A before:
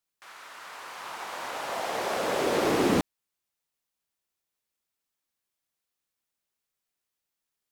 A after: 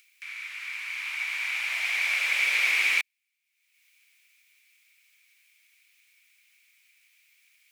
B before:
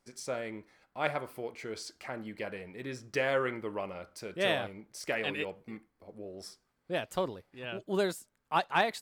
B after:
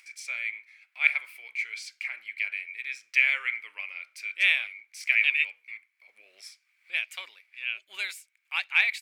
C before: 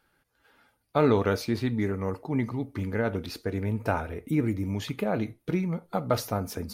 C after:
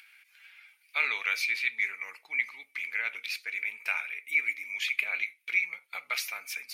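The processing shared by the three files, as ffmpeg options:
-af "highpass=f=2.3k:t=q:w=11,acompressor=mode=upward:threshold=-48dB:ratio=2.5"

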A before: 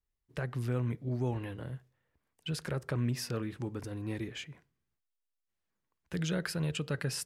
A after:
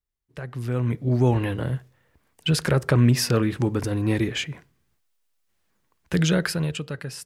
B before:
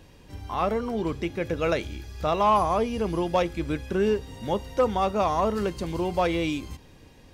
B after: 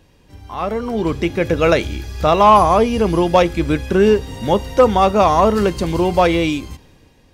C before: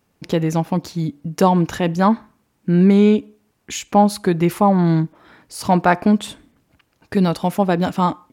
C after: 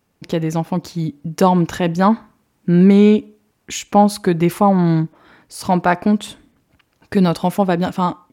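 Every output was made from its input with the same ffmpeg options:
-af "dynaudnorm=f=140:g=13:m=15.5dB,volume=-1dB"

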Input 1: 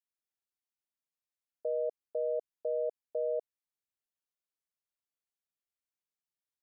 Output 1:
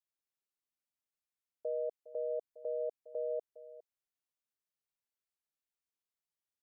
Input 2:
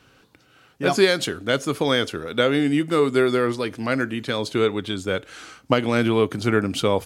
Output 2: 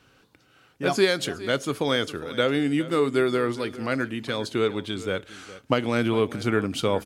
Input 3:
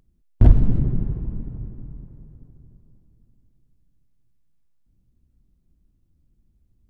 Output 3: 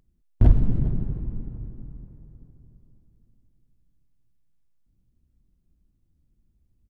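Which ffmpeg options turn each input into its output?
-af "aecho=1:1:409:0.15,volume=-3.5dB"

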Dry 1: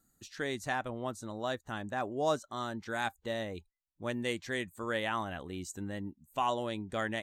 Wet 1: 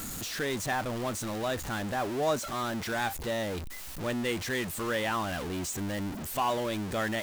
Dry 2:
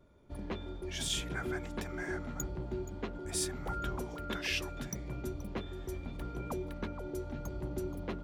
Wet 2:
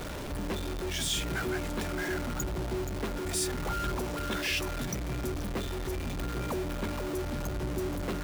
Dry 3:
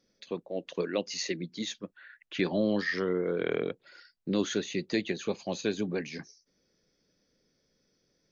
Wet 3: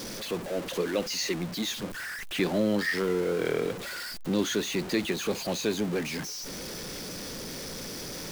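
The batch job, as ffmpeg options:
-af "aeval=exprs='val(0)+0.5*0.0251*sgn(val(0))':c=same"

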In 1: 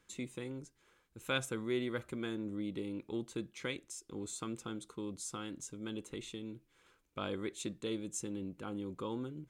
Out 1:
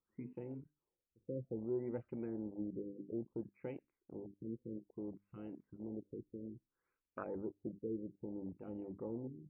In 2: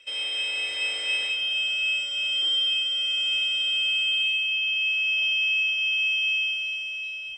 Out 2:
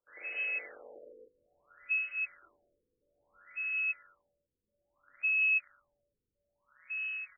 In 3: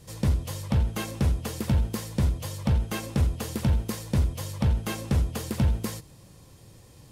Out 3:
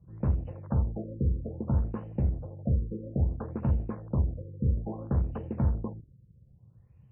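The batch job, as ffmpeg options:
-af "bandreject=f=50:t=h:w=6,bandreject=f=100:t=h:w=6,bandreject=f=150:t=h:w=6,bandreject=f=200:t=h:w=6,bandreject=f=250:t=h:w=6,bandreject=f=300:t=h:w=6,afwtdn=0.0126,afftfilt=real='re*lt(b*sr/1024,520*pow(3100/520,0.5+0.5*sin(2*PI*0.6*pts/sr)))':imag='im*lt(b*sr/1024,520*pow(3100/520,0.5+0.5*sin(2*PI*0.6*pts/sr)))':win_size=1024:overlap=0.75,volume=-2.5dB"

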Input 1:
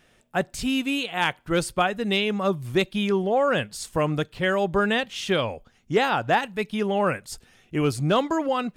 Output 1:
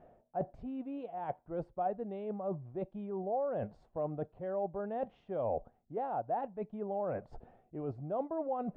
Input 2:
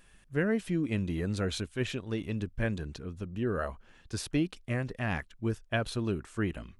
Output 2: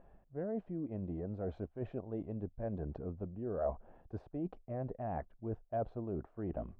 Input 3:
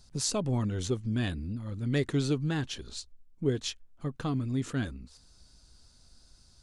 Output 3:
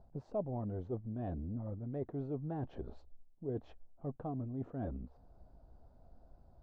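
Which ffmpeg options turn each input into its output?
-af "areverse,acompressor=threshold=-37dB:ratio=20,areverse,lowpass=f=700:t=q:w=3.5"

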